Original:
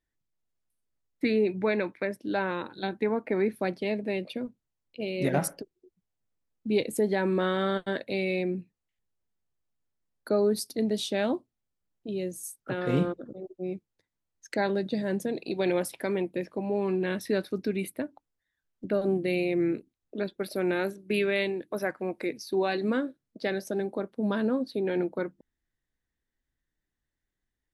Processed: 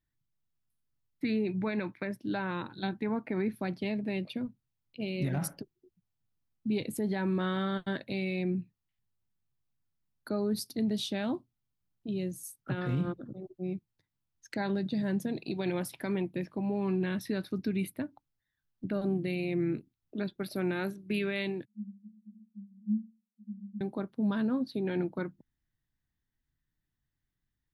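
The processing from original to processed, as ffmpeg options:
-filter_complex "[0:a]asettb=1/sr,asplit=3[s0][s1][s2];[s0]atrim=end=21.654[s3];[s1]atrim=start=21.65:end=23.81,asetpts=PTS-STARTPTS,afade=t=in:d=0.004:c=qsin,afade=t=out:st=2.156:d=0.004:c=qsin,asuperpass=centerf=210:order=12:qfactor=7.7[s4];[s2]atrim=start=23.806[s5];[s3][s4]acrossfade=d=0.004:c1=hsin:c2=qsin[s6];[s6][s5]acrossfade=d=0.004:c1=qsin:c2=hsin,equalizer=f=125:t=o:w=1:g=8,equalizer=f=500:t=o:w=1:g=-9,equalizer=f=2000:t=o:w=1:g=-3,equalizer=f=8000:t=o:w=1:g=-7,alimiter=limit=0.0708:level=0:latency=1:release=62"

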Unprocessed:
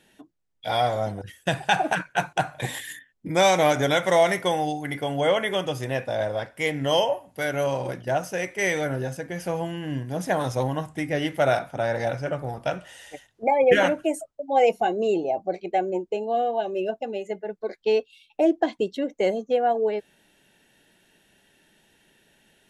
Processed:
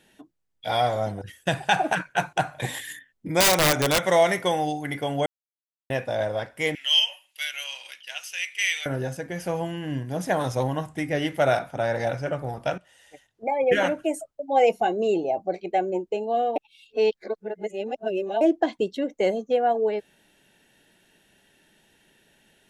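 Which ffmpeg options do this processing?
-filter_complex "[0:a]asettb=1/sr,asplit=3[s0][s1][s2];[s0]atrim=end=3.404[s3];[s1]atrim=start=3.4:end=4.06,asetpts=PTS-STARTPTS,afade=t=in:d=0.004:c=qsin,afade=t=out:st=0.656:d=0.004:c=qsin,aeval=exprs='(mod(4.73*val(0)+1,2)-1)/4.73':c=same[s4];[s2]atrim=start=4.056[s5];[s3][s4]acrossfade=d=0.004:c1=hsin:c2=qsin[s6];[s6][s5]acrossfade=d=0.004:c1=qsin:c2=hsin,asettb=1/sr,asplit=3[s7][s8][s9];[s7]atrim=end=6.754[s10];[s8]atrim=start=6.75:end=8.86,asetpts=PTS-STARTPTS,afade=t=in:d=0.004:c=qsin,afade=t=out:st=2.106:d=0.004:c=qsin,highpass=f=2800:t=q:w=3.5[s11];[s9]atrim=start=8.856[s12];[s10][s11]acrossfade=d=0.004:c1=hsin:c2=qsin[s13];[s13][s12]acrossfade=d=0.004:c1=qsin:c2=hsin,asplit=6[s14][s15][s16][s17][s18][s19];[s14]atrim=end=5.26,asetpts=PTS-STARTPTS,afade=t=out:st=5.256:d=0.004:c=hsin[s20];[s15]atrim=start=5.26:end=5.9,asetpts=PTS-STARTPTS,volume=0[s21];[s16]atrim=start=5.9:end=12.78,asetpts=PTS-STARTPTS,afade=t=in:d=0.004:c=hsin,afade=t=out:st=6.876:d=0.004:c=hsin:silence=0.188365[s22];[s17]atrim=start=12.78:end=16.562,asetpts=PTS-STARTPTS,afade=t=in:d=1.53:silence=0.188365[s23];[s18]atrim=start=16.558:end=18.412,asetpts=PTS-STARTPTS,areverse[s24];[s19]atrim=start=18.408[s25];[s20][s21][s22][s23]concat=n=4:v=0:a=1[s26];[s26][s24]acrossfade=d=0.004:c1=hsin:c2=hsin[s27];[s27][s25]acrossfade=d=0.004:c1=hsin:c2=hsin"

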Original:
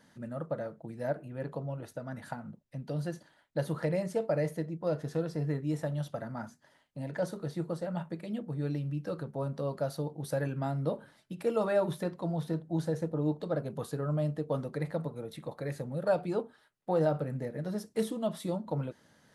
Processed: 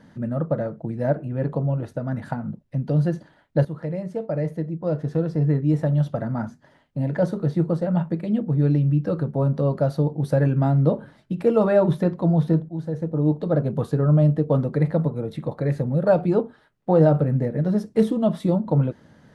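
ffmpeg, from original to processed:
-filter_complex "[0:a]asplit=3[s0][s1][s2];[s0]atrim=end=3.65,asetpts=PTS-STARTPTS,afade=t=out:st=3.646:d=0.004:c=hsin:silence=0.223872[s3];[s1]atrim=start=3.65:end=12.69,asetpts=PTS-STARTPTS,afade=t=in:d=2.61:silence=0.223872,afade=t=out:st=9.036:d=0.004:c=hsin:silence=0.16788[s4];[s2]atrim=start=12.69,asetpts=PTS-STARTPTS,afade=t=in:d=0.93:silence=0.16788[s5];[s3][s4][s5]concat=n=3:v=0:a=1,lowpass=f=2600:p=1,lowshelf=f=370:g=9,volume=2.37"

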